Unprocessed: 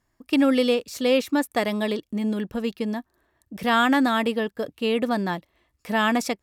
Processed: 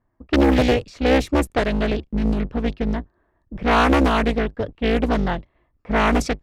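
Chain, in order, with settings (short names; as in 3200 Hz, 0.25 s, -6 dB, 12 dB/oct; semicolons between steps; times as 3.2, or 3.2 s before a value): octaver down 2 oct, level +1 dB; low-pass opened by the level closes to 1200 Hz, open at -15 dBFS; Doppler distortion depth 0.91 ms; gain +2.5 dB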